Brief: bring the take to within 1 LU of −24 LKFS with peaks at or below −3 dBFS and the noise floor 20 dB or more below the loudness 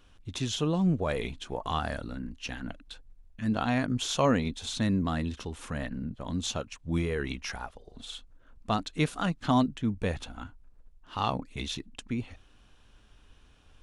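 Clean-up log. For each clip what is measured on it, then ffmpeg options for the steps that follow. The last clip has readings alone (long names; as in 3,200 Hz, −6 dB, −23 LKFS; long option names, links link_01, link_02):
integrated loudness −31.5 LKFS; sample peak −12.0 dBFS; target loudness −24.0 LKFS
→ -af "volume=7.5dB"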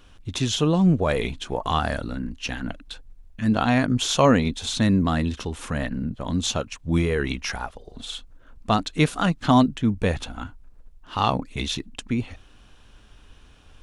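integrated loudness −24.0 LKFS; sample peak −4.5 dBFS; background noise floor −51 dBFS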